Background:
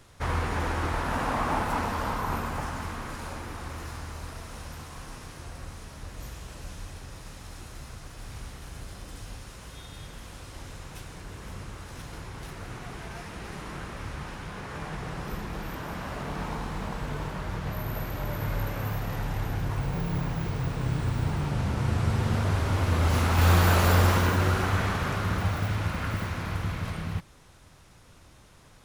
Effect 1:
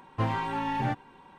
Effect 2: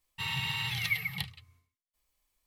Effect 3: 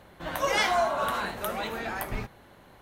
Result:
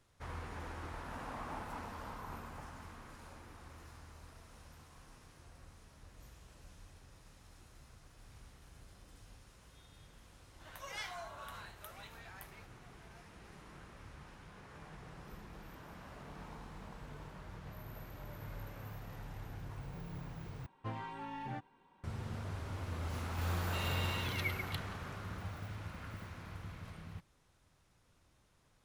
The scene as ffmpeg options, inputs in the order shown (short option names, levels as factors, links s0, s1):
-filter_complex "[0:a]volume=0.15[s0];[3:a]highpass=f=1400:p=1[s1];[s0]asplit=2[s2][s3];[s2]atrim=end=20.664[s4];[1:a]atrim=end=1.38,asetpts=PTS-STARTPTS,volume=0.2[s5];[s3]atrim=start=22.036[s6];[s1]atrim=end=2.81,asetpts=PTS-STARTPTS,volume=0.158,afade=t=in:d=0.004:c=hsin,afade=t=out:st=2.806:d=0.004:c=hsin,adelay=10400[s7];[2:a]atrim=end=2.46,asetpts=PTS-STARTPTS,volume=0.376,afade=t=in:d=0.004:c=hsin,afade=t=out:st=2.456:d=0.004:c=hsin,adelay=23540[s8];[s4][s5]acrossfade=d=0.004:c1=hsin:c2=hsin[s9];[s9][s6]acrossfade=d=0.004:c1=hsin:c2=hsin[s10];[s10][s7][s8]amix=inputs=3:normalize=0"